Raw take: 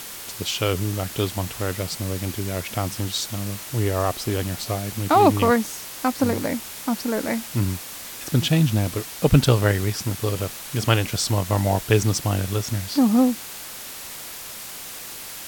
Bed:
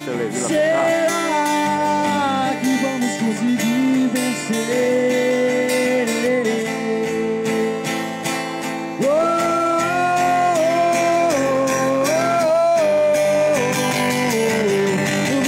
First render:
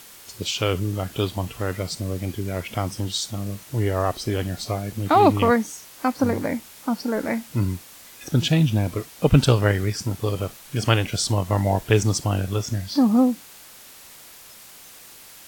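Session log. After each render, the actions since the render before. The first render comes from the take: noise print and reduce 9 dB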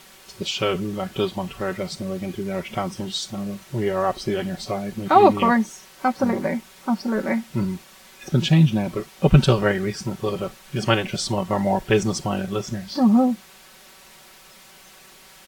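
high shelf 6100 Hz -11 dB; comb 5.3 ms, depth 79%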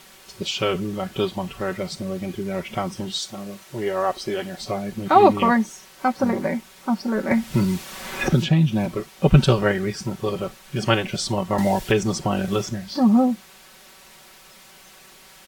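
3.19–4.61 tone controls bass -9 dB, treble +1 dB; 7.31–8.86 three-band squash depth 100%; 11.58–12.69 three-band squash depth 70%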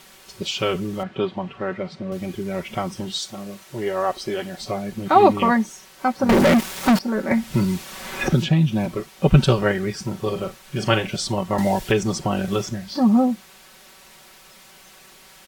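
1.03–2.12 BPF 120–2600 Hz; 6.29–6.99 sample leveller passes 5; 10.03–11.16 doubler 37 ms -11 dB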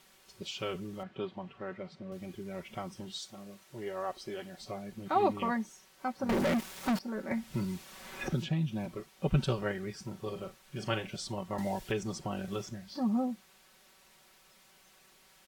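gain -14 dB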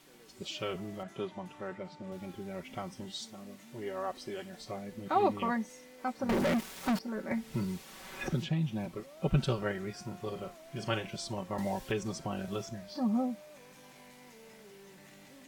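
add bed -37 dB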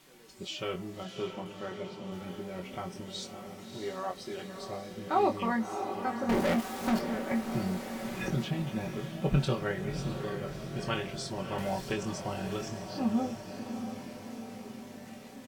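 doubler 22 ms -5.5 dB; on a send: diffused feedback echo 0.635 s, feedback 62%, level -8 dB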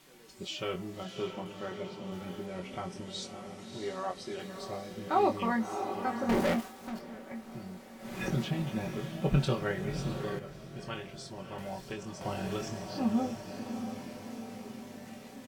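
2.46–4.4 LPF 11000 Hz 24 dB/oct; 6.48–8.24 dip -11.5 dB, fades 0.25 s; 10.39–12.21 gain -7 dB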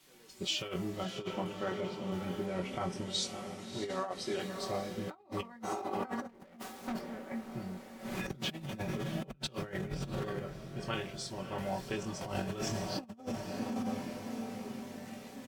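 negative-ratio compressor -37 dBFS, ratio -0.5; three-band expander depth 40%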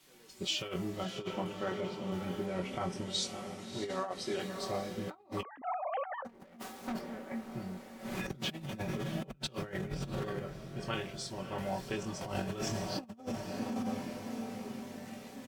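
5.43–6.25 sine-wave speech

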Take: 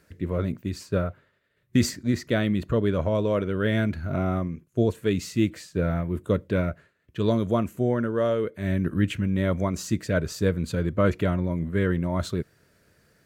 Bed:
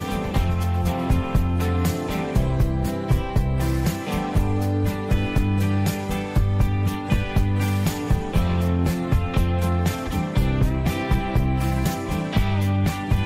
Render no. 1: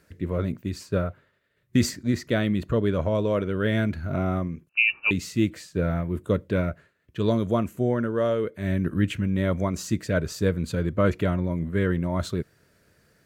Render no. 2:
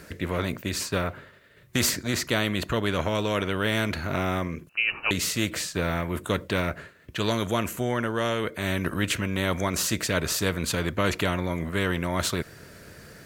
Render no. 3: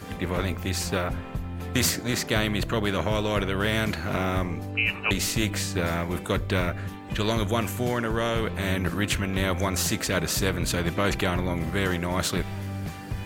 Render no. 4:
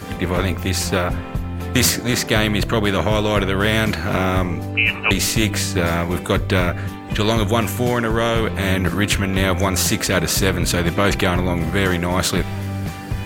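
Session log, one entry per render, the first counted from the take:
4.69–5.11 inverted band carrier 2800 Hz
spectral compressor 2:1
add bed -12 dB
gain +7.5 dB; limiter -2 dBFS, peak gain reduction 1 dB

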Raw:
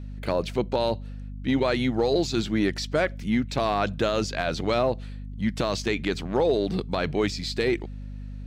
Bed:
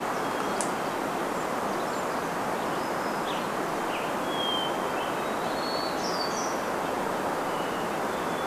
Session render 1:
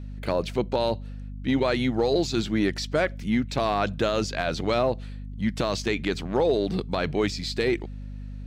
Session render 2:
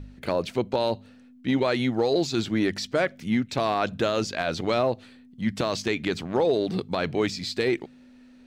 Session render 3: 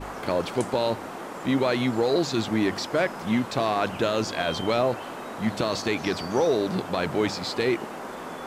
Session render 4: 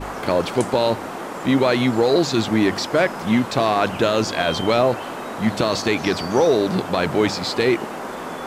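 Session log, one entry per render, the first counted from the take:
nothing audible
de-hum 50 Hz, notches 4
add bed -7 dB
gain +6 dB

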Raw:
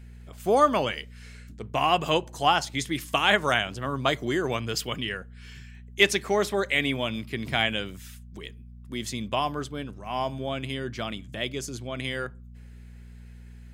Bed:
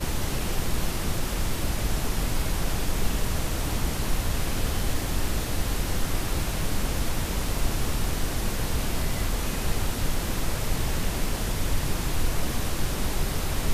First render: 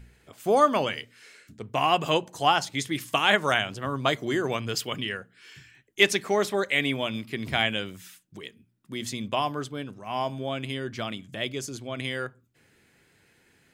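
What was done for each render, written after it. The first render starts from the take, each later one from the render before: de-hum 60 Hz, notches 4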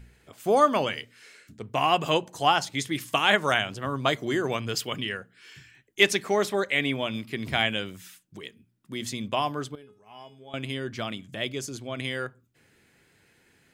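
6.63–7.1 high shelf 5500 Hz -5 dB; 9.75–10.54 resonator 420 Hz, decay 0.31 s, mix 90%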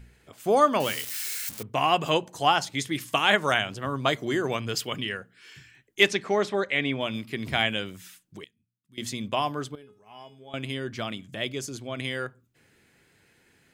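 0.8–1.63 switching spikes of -24.5 dBFS; 6.08–7.01 air absorption 80 m; 8.44–8.98 passive tone stack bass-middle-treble 6-0-2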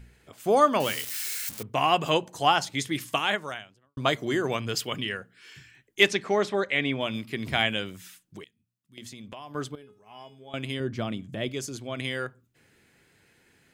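3.06–3.97 fade out quadratic; 8.42–9.55 compressor 5:1, threshold -40 dBFS; 10.8–11.49 tilt shelf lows +5.5 dB, about 760 Hz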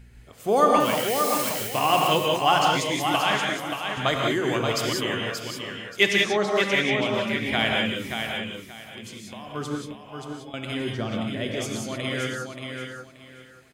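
feedback echo 0.579 s, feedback 24%, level -6 dB; non-linear reverb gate 0.21 s rising, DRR 0 dB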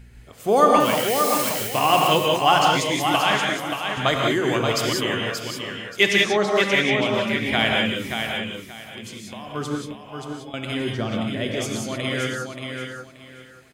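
gain +3 dB; limiter -3 dBFS, peak gain reduction 1.5 dB

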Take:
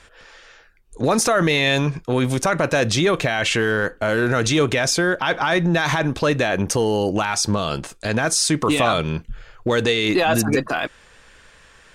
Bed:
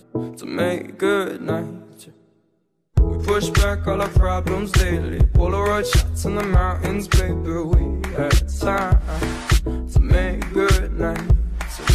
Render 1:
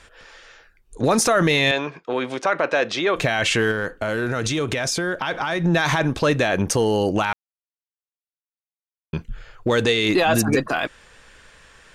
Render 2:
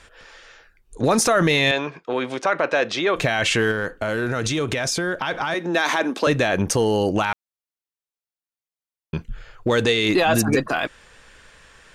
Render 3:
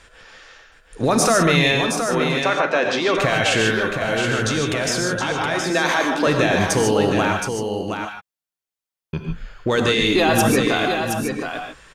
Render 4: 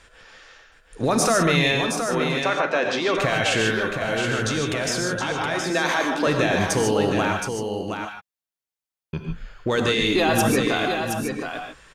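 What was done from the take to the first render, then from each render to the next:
1.71–3.16 BPF 390–3500 Hz; 3.71–5.64 compressor 4:1, threshold -20 dBFS; 7.33–9.13 mute
5.54–6.27 steep high-pass 210 Hz 48 dB/oct
echo 0.72 s -6.5 dB; non-linear reverb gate 0.17 s rising, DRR 3 dB
gain -3 dB

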